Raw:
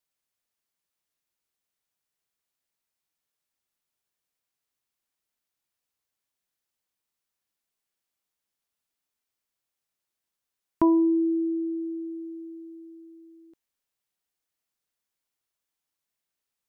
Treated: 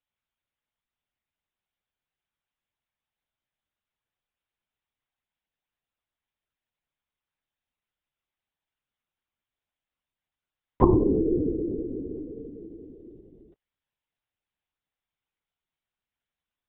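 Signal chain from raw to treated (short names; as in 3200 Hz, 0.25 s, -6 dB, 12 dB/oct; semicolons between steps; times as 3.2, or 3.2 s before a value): whisperiser; LPC vocoder at 8 kHz whisper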